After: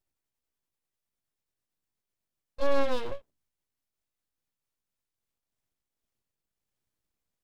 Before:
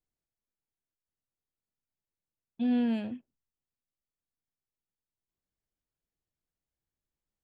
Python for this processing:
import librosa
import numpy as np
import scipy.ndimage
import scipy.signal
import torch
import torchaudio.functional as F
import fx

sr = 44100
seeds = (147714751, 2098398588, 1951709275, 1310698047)

y = fx.pitch_glide(x, sr, semitones=3.5, runs='ending unshifted')
y = np.abs(y)
y = y * librosa.db_to_amplitude(7.0)